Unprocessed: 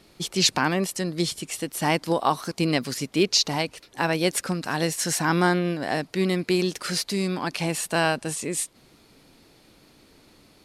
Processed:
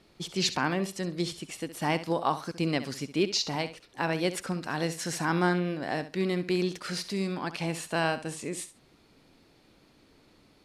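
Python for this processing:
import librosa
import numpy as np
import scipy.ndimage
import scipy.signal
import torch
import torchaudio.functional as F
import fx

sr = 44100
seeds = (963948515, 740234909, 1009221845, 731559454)

y = fx.high_shelf(x, sr, hz=7000.0, db=-10.0)
y = fx.echo_feedback(y, sr, ms=67, feedback_pct=18, wet_db=-13)
y = y * librosa.db_to_amplitude(-5.0)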